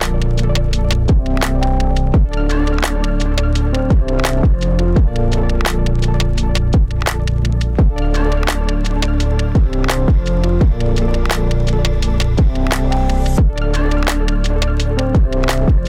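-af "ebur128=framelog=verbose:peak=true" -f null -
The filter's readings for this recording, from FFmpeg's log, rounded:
Integrated loudness:
  I:         -16.5 LUFS
  Threshold: -26.4 LUFS
Loudness range:
  LRA:         0.7 LU
  Threshold: -36.4 LUFS
  LRA low:   -16.9 LUFS
  LRA high:  -16.1 LUFS
True peak:
  Peak:       -6.8 dBFS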